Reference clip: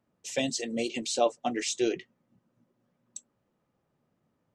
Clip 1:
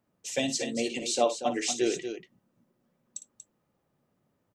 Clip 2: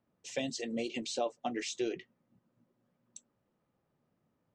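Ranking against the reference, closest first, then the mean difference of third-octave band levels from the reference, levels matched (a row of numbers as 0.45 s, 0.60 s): 2, 1; 2.0 dB, 5.0 dB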